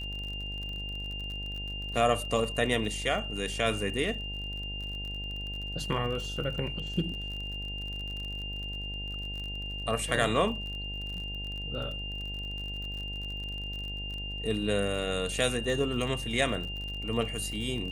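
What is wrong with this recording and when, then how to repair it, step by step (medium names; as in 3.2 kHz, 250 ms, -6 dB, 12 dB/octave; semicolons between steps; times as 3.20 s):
buzz 50 Hz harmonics 18 -39 dBFS
crackle 40 per s -37 dBFS
whine 2.8 kHz -37 dBFS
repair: de-click; de-hum 50 Hz, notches 18; band-stop 2.8 kHz, Q 30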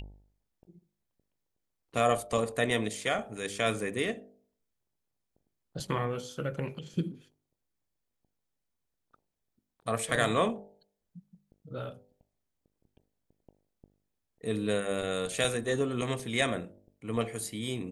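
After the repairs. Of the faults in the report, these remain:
nothing left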